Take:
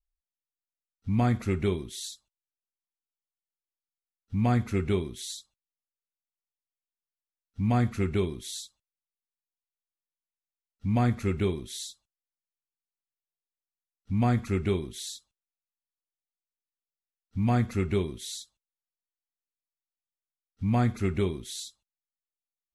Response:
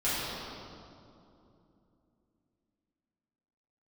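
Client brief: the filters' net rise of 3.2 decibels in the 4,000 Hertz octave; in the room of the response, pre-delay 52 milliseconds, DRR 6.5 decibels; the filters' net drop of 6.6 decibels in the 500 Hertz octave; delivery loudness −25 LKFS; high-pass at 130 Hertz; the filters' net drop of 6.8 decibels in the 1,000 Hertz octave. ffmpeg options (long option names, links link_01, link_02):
-filter_complex "[0:a]highpass=130,equalizer=frequency=500:width_type=o:gain=-8.5,equalizer=frequency=1000:width_type=o:gain=-6,equalizer=frequency=4000:width_type=o:gain=4,asplit=2[link_01][link_02];[1:a]atrim=start_sample=2205,adelay=52[link_03];[link_02][link_03]afir=irnorm=-1:irlink=0,volume=-17.5dB[link_04];[link_01][link_04]amix=inputs=2:normalize=0,volume=7dB"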